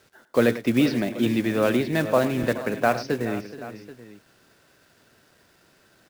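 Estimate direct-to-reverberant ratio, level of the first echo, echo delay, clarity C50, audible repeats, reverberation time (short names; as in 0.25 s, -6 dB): none, -14.5 dB, 0.102 s, none, 4, none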